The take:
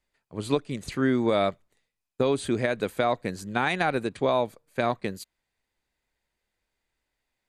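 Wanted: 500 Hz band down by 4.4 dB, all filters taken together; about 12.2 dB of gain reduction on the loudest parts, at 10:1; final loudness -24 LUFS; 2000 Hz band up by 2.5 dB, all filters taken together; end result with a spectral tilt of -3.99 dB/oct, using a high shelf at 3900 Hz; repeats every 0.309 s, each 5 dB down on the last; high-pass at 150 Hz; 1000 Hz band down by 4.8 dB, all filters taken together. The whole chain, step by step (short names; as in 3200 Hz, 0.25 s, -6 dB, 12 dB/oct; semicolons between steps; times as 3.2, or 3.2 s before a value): HPF 150 Hz; bell 500 Hz -4 dB; bell 1000 Hz -6.5 dB; bell 2000 Hz +7.5 dB; high shelf 3900 Hz -8 dB; compressor 10:1, threshold -33 dBFS; feedback echo 0.309 s, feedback 56%, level -5 dB; gain +14 dB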